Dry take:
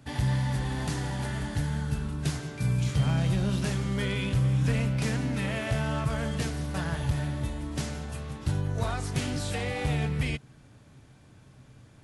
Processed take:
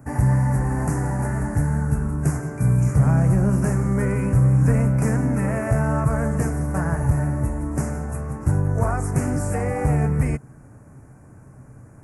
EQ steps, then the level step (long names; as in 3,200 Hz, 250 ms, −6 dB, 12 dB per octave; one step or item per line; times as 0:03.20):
Butterworth band-reject 3,600 Hz, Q 0.57
+8.5 dB